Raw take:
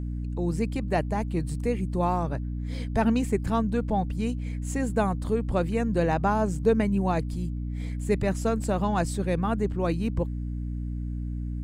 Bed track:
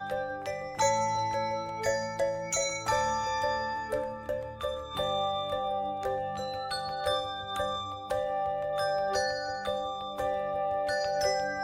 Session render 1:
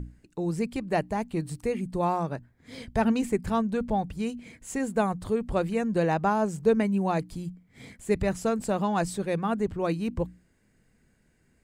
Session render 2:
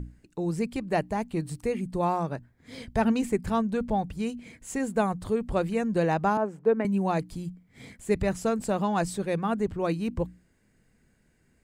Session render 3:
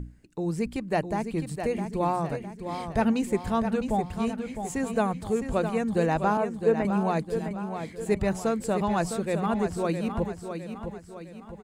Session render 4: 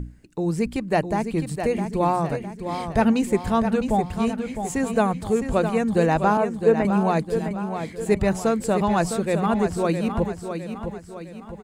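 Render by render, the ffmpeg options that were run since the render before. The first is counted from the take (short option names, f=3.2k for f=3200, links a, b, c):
-af "bandreject=f=60:t=h:w=6,bandreject=f=120:t=h:w=6,bandreject=f=180:t=h:w=6,bandreject=f=240:t=h:w=6,bandreject=f=300:t=h:w=6"
-filter_complex "[0:a]asettb=1/sr,asplit=3[a][b][c];[a]atrim=end=6.374[d];[b]atrim=start=6.37:end=6.85,asetpts=PTS-STARTPTS,afade=t=in:d=0.004:c=qsin,afade=t=out:st=0.476:d=0.004:c=qsin,acrossover=split=220 2300:gain=0.0891 1 0.1[e][f][g];[e][f][g]amix=inputs=3:normalize=0[h];[c]atrim=start=6.846[i];[d][h]acrossfade=d=0.004:c1=hsin:c2=qsin[j];[j][i]acrossfade=d=0.004:c1=qsin:c2=hsin"
-af "aecho=1:1:659|1318|1977|2636|3295:0.398|0.183|0.0842|0.0388|0.0178"
-af "volume=5dB"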